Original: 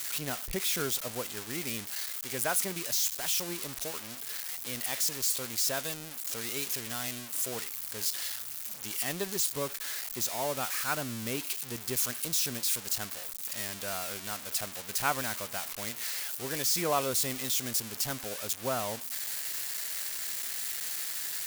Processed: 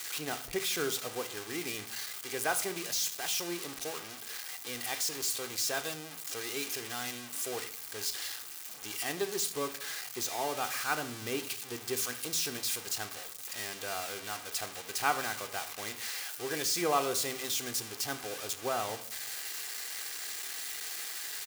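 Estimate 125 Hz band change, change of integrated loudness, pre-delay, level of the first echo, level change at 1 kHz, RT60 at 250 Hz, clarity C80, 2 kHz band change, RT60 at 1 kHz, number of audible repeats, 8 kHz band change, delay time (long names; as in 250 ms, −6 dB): −6.0 dB, −3.0 dB, 3 ms, −19.0 dB, +1.0 dB, 0.90 s, 19.0 dB, +0.5 dB, 0.70 s, 1, −3.0 dB, 75 ms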